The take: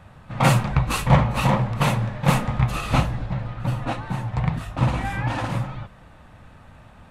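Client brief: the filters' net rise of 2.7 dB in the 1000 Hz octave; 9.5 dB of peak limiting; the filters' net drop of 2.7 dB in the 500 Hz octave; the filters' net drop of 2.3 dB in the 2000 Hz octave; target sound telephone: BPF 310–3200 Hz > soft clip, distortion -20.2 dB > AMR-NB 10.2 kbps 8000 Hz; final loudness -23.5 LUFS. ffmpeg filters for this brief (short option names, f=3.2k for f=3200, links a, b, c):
-af "equalizer=f=500:t=o:g=-4.5,equalizer=f=1k:t=o:g=5.5,equalizer=f=2k:t=o:g=-3.5,alimiter=limit=-13dB:level=0:latency=1,highpass=310,lowpass=3.2k,asoftclip=threshold=-17.5dB,volume=8.5dB" -ar 8000 -c:a libopencore_amrnb -b:a 10200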